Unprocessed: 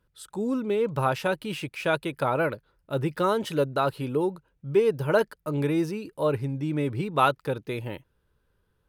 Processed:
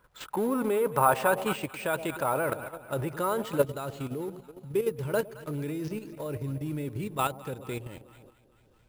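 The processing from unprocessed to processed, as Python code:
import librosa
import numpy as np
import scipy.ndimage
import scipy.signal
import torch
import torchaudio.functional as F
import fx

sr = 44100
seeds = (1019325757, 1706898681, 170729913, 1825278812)

y = fx.law_mismatch(x, sr, coded='mu')
y = fx.echo_alternate(y, sr, ms=109, hz=800.0, feedback_pct=75, wet_db=-13)
y = fx.level_steps(y, sr, step_db=10)
y = fx.peak_eq(y, sr, hz=1000.0, db=fx.steps((0.0, 14.0), (1.56, 6.0), (3.63, -4.5)), octaves=2.3)
y = np.repeat(y[::4], 4)[:len(y)]
y = F.gain(torch.from_numpy(y), -1.5).numpy()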